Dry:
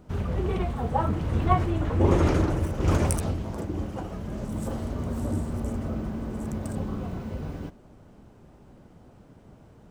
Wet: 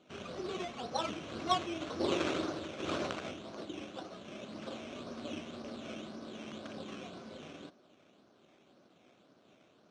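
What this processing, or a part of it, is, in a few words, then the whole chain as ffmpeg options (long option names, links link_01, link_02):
circuit-bent sampling toy: -af "acrusher=samples=12:mix=1:aa=0.000001:lfo=1:lforange=7.2:lforate=1.9,highpass=400,equalizer=frequency=460:width_type=q:width=4:gain=-6,equalizer=frequency=880:width_type=q:width=4:gain=-10,equalizer=frequency=1900:width_type=q:width=4:gain=-6,equalizer=frequency=4900:width_type=q:width=4:gain=-8,lowpass=frequency=5900:width=0.5412,lowpass=frequency=5900:width=1.3066,volume=-3dB"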